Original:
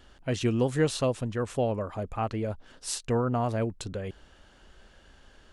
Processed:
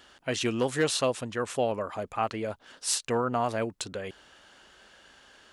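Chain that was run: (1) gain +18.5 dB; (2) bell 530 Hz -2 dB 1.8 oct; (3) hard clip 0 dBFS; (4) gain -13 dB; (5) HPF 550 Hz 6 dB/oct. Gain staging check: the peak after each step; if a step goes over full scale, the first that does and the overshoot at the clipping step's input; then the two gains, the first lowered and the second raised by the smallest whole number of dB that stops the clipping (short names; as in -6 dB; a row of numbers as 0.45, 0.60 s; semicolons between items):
+5.5, +5.5, 0.0, -13.0, -12.0 dBFS; step 1, 5.5 dB; step 1 +12.5 dB, step 4 -7 dB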